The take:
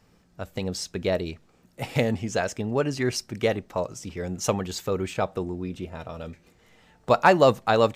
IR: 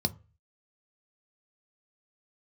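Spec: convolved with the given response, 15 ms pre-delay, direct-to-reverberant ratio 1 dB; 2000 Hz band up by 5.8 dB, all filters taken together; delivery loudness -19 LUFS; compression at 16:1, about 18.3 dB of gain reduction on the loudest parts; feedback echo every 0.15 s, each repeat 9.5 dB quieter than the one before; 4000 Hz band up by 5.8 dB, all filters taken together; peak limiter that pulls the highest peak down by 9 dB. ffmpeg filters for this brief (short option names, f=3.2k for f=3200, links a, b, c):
-filter_complex "[0:a]equalizer=f=2k:t=o:g=6.5,equalizer=f=4k:t=o:g=5.5,acompressor=threshold=-29dB:ratio=16,alimiter=limit=-23.5dB:level=0:latency=1,aecho=1:1:150|300|450|600:0.335|0.111|0.0365|0.012,asplit=2[a][b];[1:a]atrim=start_sample=2205,adelay=15[c];[b][c]afir=irnorm=-1:irlink=0,volume=-7dB[d];[a][d]amix=inputs=2:normalize=0,volume=9.5dB"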